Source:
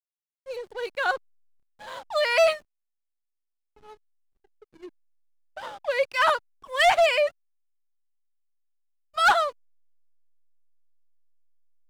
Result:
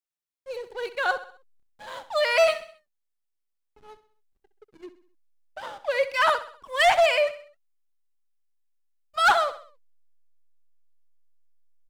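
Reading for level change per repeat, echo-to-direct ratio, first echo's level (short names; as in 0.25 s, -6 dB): -7.0 dB, -13.0 dB, -14.0 dB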